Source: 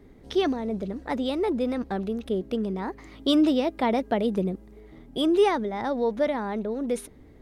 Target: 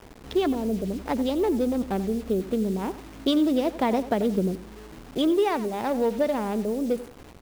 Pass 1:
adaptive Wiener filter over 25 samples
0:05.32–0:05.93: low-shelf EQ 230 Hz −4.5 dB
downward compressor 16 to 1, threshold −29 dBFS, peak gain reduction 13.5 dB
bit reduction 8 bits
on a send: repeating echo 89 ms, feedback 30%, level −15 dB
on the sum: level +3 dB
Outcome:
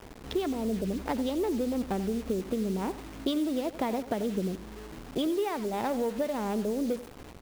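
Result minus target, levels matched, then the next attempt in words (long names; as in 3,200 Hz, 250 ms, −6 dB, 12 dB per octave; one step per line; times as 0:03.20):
downward compressor: peak gain reduction +7.5 dB
adaptive Wiener filter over 25 samples
0:05.32–0:05.93: low-shelf EQ 230 Hz −4.5 dB
downward compressor 16 to 1, threshold −21 dBFS, peak gain reduction 6 dB
bit reduction 8 bits
on a send: repeating echo 89 ms, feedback 30%, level −15 dB
on the sum: level +3 dB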